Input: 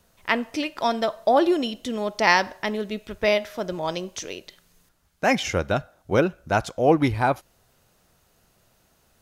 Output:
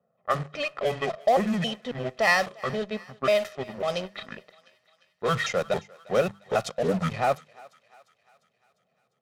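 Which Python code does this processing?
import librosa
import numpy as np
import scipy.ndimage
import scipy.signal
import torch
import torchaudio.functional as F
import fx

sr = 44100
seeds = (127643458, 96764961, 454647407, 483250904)

p1 = fx.pitch_trill(x, sr, semitones=-8.5, every_ms=273)
p2 = scipy.signal.sosfilt(scipy.signal.butter(4, 150.0, 'highpass', fs=sr, output='sos'), p1)
p3 = fx.hum_notches(p2, sr, base_hz=50, count=4)
p4 = p3 + 0.96 * np.pad(p3, (int(1.6 * sr / 1000.0), 0))[:len(p3)]
p5 = fx.fuzz(p4, sr, gain_db=34.0, gate_db=-33.0)
p6 = p4 + (p5 * librosa.db_to_amplitude(-9.5))
p7 = fx.env_lowpass(p6, sr, base_hz=810.0, full_db=-13.5)
p8 = p7 + fx.echo_thinned(p7, sr, ms=350, feedback_pct=59, hz=730.0, wet_db=-21.0, dry=0)
y = p8 * librosa.db_to_amplitude(-8.0)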